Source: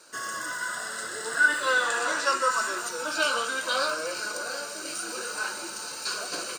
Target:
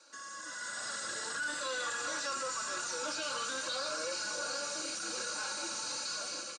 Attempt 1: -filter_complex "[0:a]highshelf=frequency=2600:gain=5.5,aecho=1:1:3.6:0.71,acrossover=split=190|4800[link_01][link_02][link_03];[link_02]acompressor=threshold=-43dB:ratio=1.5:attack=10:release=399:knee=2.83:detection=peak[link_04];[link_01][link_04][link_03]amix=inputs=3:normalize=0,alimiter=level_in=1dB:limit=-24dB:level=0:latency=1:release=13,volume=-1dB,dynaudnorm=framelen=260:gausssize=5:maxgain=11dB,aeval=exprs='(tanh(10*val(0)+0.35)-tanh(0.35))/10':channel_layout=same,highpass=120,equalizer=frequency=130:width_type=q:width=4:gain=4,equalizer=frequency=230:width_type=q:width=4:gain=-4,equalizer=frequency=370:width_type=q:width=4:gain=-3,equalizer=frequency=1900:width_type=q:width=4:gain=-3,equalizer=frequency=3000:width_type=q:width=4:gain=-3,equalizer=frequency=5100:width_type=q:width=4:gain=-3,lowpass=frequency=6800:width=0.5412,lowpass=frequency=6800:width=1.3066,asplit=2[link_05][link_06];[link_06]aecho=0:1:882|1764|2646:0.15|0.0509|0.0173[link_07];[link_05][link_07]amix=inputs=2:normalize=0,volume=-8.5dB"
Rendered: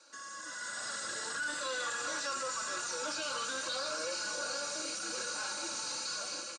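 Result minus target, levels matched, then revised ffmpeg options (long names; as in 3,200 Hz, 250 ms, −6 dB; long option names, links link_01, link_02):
echo 518 ms early
-filter_complex "[0:a]highshelf=frequency=2600:gain=5.5,aecho=1:1:3.6:0.71,acrossover=split=190|4800[link_01][link_02][link_03];[link_02]acompressor=threshold=-43dB:ratio=1.5:attack=10:release=399:knee=2.83:detection=peak[link_04];[link_01][link_04][link_03]amix=inputs=3:normalize=0,alimiter=level_in=1dB:limit=-24dB:level=0:latency=1:release=13,volume=-1dB,dynaudnorm=framelen=260:gausssize=5:maxgain=11dB,aeval=exprs='(tanh(10*val(0)+0.35)-tanh(0.35))/10':channel_layout=same,highpass=120,equalizer=frequency=130:width_type=q:width=4:gain=4,equalizer=frequency=230:width_type=q:width=4:gain=-4,equalizer=frequency=370:width_type=q:width=4:gain=-3,equalizer=frequency=1900:width_type=q:width=4:gain=-3,equalizer=frequency=3000:width_type=q:width=4:gain=-3,equalizer=frequency=5100:width_type=q:width=4:gain=-3,lowpass=frequency=6800:width=0.5412,lowpass=frequency=6800:width=1.3066,asplit=2[link_05][link_06];[link_06]aecho=0:1:1400|2800|4200:0.15|0.0509|0.0173[link_07];[link_05][link_07]amix=inputs=2:normalize=0,volume=-8.5dB"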